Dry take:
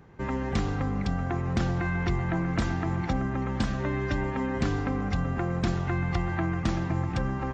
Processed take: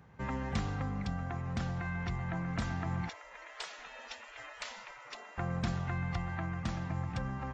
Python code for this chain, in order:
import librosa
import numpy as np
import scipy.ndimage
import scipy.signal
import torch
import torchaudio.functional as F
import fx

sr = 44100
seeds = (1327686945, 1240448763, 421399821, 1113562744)

y = scipy.signal.sosfilt(scipy.signal.butter(2, 50.0, 'highpass', fs=sr, output='sos'), x)
y = fx.spec_gate(y, sr, threshold_db=-20, keep='weak', at=(3.09, 5.38))
y = fx.peak_eq(y, sr, hz=350.0, db=-11.0, octaves=0.58)
y = fx.rider(y, sr, range_db=5, speed_s=2.0)
y = y * librosa.db_to_amplitude(-6.5)